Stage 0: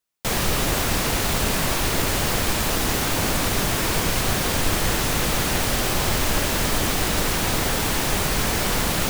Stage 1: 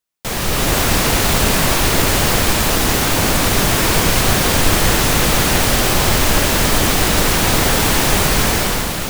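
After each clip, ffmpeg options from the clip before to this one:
ffmpeg -i in.wav -af "dynaudnorm=framelen=120:gausssize=9:maxgain=11.5dB" out.wav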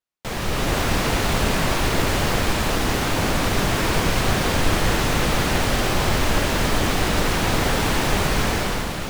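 ffmpeg -i in.wav -af "lowpass=frequency=3600:poles=1,volume=-4.5dB" out.wav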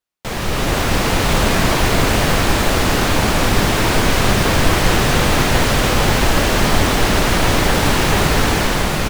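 ffmpeg -i in.wav -af "aecho=1:1:679:0.668,volume=4dB" out.wav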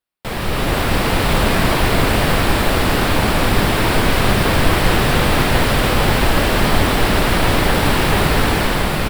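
ffmpeg -i in.wav -af "equalizer=frequency=6400:width=2.7:gain=-10" out.wav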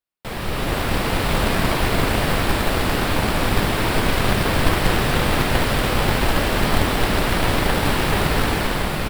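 ffmpeg -i in.wav -af "aeval=exprs='0.891*(cos(1*acos(clip(val(0)/0.891,-1,1)))-cos(1*PI/2))+0.112*(cos(3*acos(clip(val(0)/0.891,-1,1)))-cos(3*PI/2))':channel_layout=same,volume=-1dB" out.wav

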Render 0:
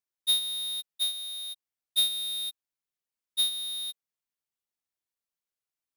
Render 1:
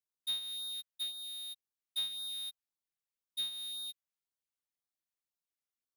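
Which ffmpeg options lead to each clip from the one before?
ffmpeg -i in.wav -filter_complex "[0:a]acrossover=split=130|960|3400[link_01][link_02][link_03][link_04];[link_04]acompressor=threshold=-37dB:ratio=6[link_05];[link_01][link_02][link_03][link_05]amix=inputs=4:normalize=0,afftfilt=real='re*(1-between(b*sr/1024,250*pow(2500/250,0.5+0.5*sin(2*PI*1.9*pts/sr))/1.41,250*pow(2500/250,0.5+0.5*sin(2*PI*1.9*pts/sr))*1.41))':imag='im*(1-between(b*sr/1024,250*pow(2500/250,0.5+0.5*sin(2*PI*1.9*pts/sr))/1.41,250*pow(2500/250,0.5+0.5*sin(2*PI*1.9*pts/sr))*1.41))':win_size=1024:overlap=0.75,volume=-5.5dB" out.wav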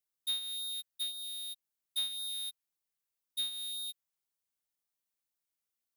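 ffmpeg -i in.wav -af "highshelf=frequency=7900:gain=7" out.wav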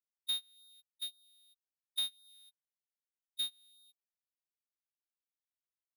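ffmpeg -i in.wav -af "agate=range=-25dB:threshold=-34dB:ratio=16:detection=peak" out.wav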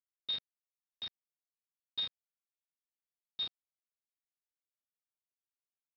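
ffmpeg -i in.wav -af "aresample=11025,acrusher=bits=6:mix=0:aa=0.000001,aresample=44100,highpass=frequency=250:poles=1,volume=-1dB" out.wav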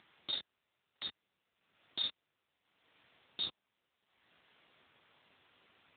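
ffmpeg -i in.wav -af "flanger=delay=19:depth=4.5:speed=1.7,acompressor=mode=upward:threshold=-44dB:ratio=2.5,volume=9.5dB" -ar 8000 -c:a libopencore_amrnb -b:a 7950 out.amr

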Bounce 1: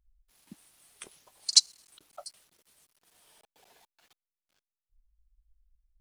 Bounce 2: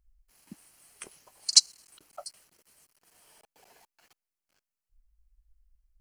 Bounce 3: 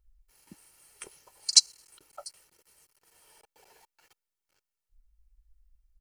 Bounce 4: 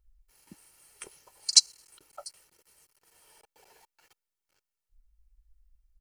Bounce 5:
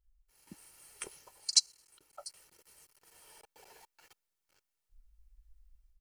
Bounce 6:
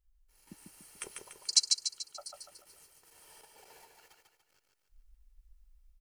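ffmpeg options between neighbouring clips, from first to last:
ffmpeg -i in.wav -af "equalizer=frequency=3600:width=7.8:gain=-13.5,volume=2.5dB" out.wav
ffmpeg -i in.wav -af "aecho=1:1:2.2:0.46,volume=-1dB" out.wav
ffmpeg -i in.wav -af anull out.wav
ffmpeg -i in.wav -af "dynaudnorm=framelen=310:gausssize=3:maxgain=10dB,volume=-8dB" out.wav
ffmpeg -i in.wav -af "aecho=1:1:145|290|435|580|725|870:0.631|0.29|0.134|0.0614|0.0283|0.013" out.wav

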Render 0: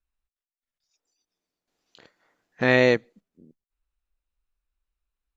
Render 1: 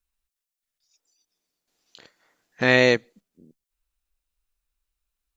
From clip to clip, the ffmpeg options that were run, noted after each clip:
ffmpeg -i in.wav -af "highshelf=frequency=3100:gain=9.5" out.wav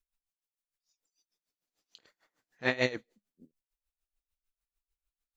ffmpeg -i in.wav -af "alimiter=limit=-6dB:level=0:latency=1:release=144,flanger=delay=0.3:depth=9.8:regen=52:speed=1.4:shape=triangular,aeval=exprs='val(0)*pow(10,-20*(0.5-0.5*cos(2*PI*6.7*n/s))/20)':channel_layout=same" out.wav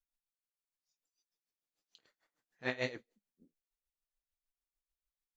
ffmpeg -i in.wav -af "flanger=delay=4.1:depth=6:regen=-58:speed=1.6:shape=triangular,volume=-3.5dB" out.wav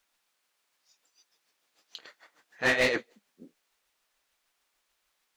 ffmpeg -i in.wav -filter_complex "[0:a]asplit=2[link_01][link_02];[link_02]highpass=frequency=720:poles=1,volume=28dB,asoftclip=type=tanh:threshold=-17.5dB[link_03];[link_01][link_03]amix=inputs=2:normalize=0,lowpass=frequency=3300:poles=1,volume=-6dB,volume=3dB" out.wav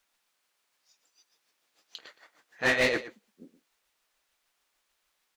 ffmpeg -i in.wav -af "aecho=1:1:119:0.188" out.wav

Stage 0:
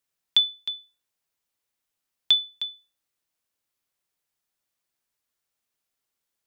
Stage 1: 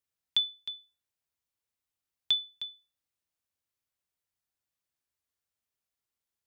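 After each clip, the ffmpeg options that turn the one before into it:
ffmpeg -i in.wav -af "equalizer=frequency=80:width_type=o:width=1.2:gain=9.5,volume=-7.5dB" out.wav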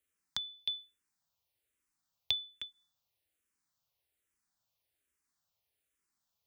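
ffmpeg -i in.wav -filter_complex "[0:a]acrossover=split=280[link_01][link_02];[link_02]acompressor=threshold=-38dB:ratio=6[link_03];[link_01][link_03]amix=inputs=2:normalize=0,asplit=2[link_04][link_05];[link_05]afreqshift=-1.2[link_06];[link_04][link_06]amix=inputs=2:normalize=1,volume=7dB" out.wav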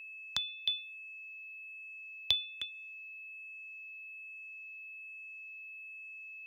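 ffmpeg -i in.wav -af "aeval=exprs='val(0)+0.00398*sin(2*PI*2600*n/s)':channel_layout=same,volume=3dB" out.wav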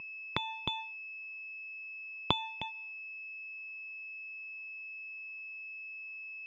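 ffmpeg -i in.wav -af "aeval=exprs='max(val(0),0)':channel_layout=same,highpass=150,equalizer=frequency=250:width_type=q:width=4:gain=-5,equalizer=frequency=500:width_type=q:width=4:gain=-3,equalizer=frequency=1000:width_type=q:width=4:gain=9,equalizer=frequency=1600:width_type=q:width=4:gain=-8,lowpass=frequency=2600:width=0.5412,lowpass=frequency=2600:width=1.3066,volume=12.5dB" out.wav

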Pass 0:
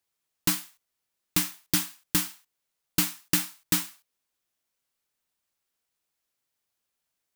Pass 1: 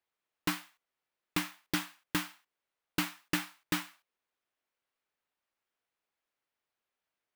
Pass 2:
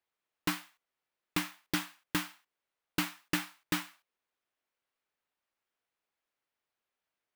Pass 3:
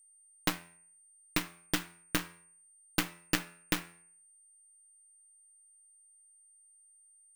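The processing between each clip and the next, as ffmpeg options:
ffmpeg -i in.wav -af "bass=frequency=250:gain=-8,treble=frequency=4000:gain=-15" out.wav
ffmpeg -i in.wav -af anull out.wav
ffmpeg -i in.wav -af "aeval=exprs='val(0)+0.00251*sin(2*PI*8800*n/s)':channel_layout=same,aeval=exprs='0.188*(cos(1*acos(clip(val(0)/0.188,-1,1)))-cos(1*PI/2))+0.0531*(cos(3*acos(clip(val(0)/0.188,-1,1)))-cos(3*PI/2))+0.0075*(cos(6*acos(clip(val(0)/0.188,-1,1)))-cos(6*PI/2))':channel_layout=same,bandreject=frequency=85.54:width_type=h:width=4,bandreject=frequency=171.08:width_type=h:width=4,bandreject=frequency=256.62:width_type=h:width=4,bandreject=frequency=342.16:width_type=h:width=4,bandreject=frequency=427.7:width_type=h:width=4,bandreject=frequency=513.24:width_type=h:width=4,bandreject=frequency=598.78:width_type=h:width=4,bandreject=frequency=684.32:width_type=h:width=4,bandreject=frequency=769.86:width_type=h:width=4,bandreject=frequency=855.4:width_type=h:width=4,bandreject=frequency=940.94:width_type=h:width=4,bandreject=frequency=1026.48:width_type=h:width=4,bandreject=frequency=1112.02:width_type=h:width=4,bandreject=frequency=1197.56:width_type=h:width=4,bandreject=frequency=1283.1:width_type=h:width=4,bandreject=frequency=1368.64:width_type=h:width=4,bandreject=frequency=1454.18:width_type=h:width=4,bandreject=frequency=1539.72:width_type=h:width=4,bandreject=frequency=1625.26:width_type=h:width=4,bandreject=frequency=1710.8:width_type=h:width=4,bandreject=frequency=1796.34:width_type=h:width=4,bandreject=frequency=1881.88:width_type=h:width=4,bandreject=frequency=1967.42:width_type=h:width=4,bandreject=frequency=2052.96:width_type=h:width=4,bandreject=frequency=2138.5:width_type=h:width=4,bandreject=frequency=2224.04:width_type=h:width=4,bandreject=frequency=2309.58:width_type=h:width=4,bandreject=frequency=2395.12:width_type=h:width=4,bandreject=frequency=2480.66:width_type=h:width=4,bandreject=frequency=2566.2:width_type=h:width=4,bandreject=frequency=2651.74:width_type=h:width=4,bandreject=frequency=2737.28:width_type=h:width=4,volume=9dB" out.wav

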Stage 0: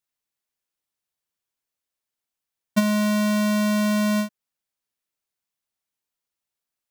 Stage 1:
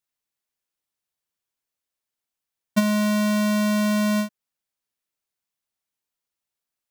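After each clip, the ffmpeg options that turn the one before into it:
ffmpeg -i in.wav -af anull out.wav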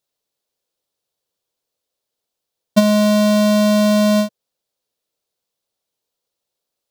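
ffmpeg -i in.wav -af "equalizer=frequency=125:width_type=o:width=1:gain=3,equalizer=frequency=500:width_type=o:width=1:gain=12,equalizer=frequency=2000:width_type=o:width=1:gain=-5,equalizer=frequency=4000:width_type=o:width=1:gain=6,volume=4dB" out.wav

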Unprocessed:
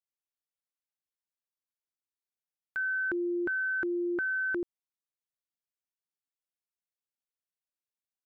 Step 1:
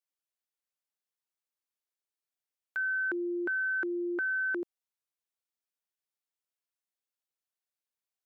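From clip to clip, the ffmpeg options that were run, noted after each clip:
ffmpeg -i in.wav -af "highpass=310" out.wav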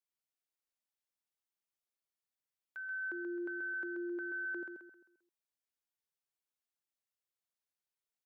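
ffmpeg -i in.wav -filter_complex "[0:a]alimiter=level_in=11.5dB:limit=-24dB:level=0:latency=1,volume=-11.5dB,asplit=2[link_01][link_02];[link_02]aecho=0:1:132|264|396|528|660:0.531|0.207|0.0807|0.0315|0.0123[link_03];[link_01][link_03]amix=inputs=2:normalize=0,volume=-4.5dB" out.wav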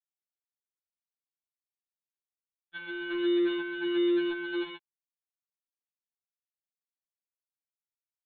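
ffmpeg -i in.wav -af "aresample=8000,acrusher=bits=6:mix=0:aa=0.000001,aresample=44100,afftfilt=real='re*2.83*eq(mod(b,8),0)':imag='im*2.83*eq(mod(b,8),0)':win_size=2048:overlap=0.75,volume=7dB" out.wav

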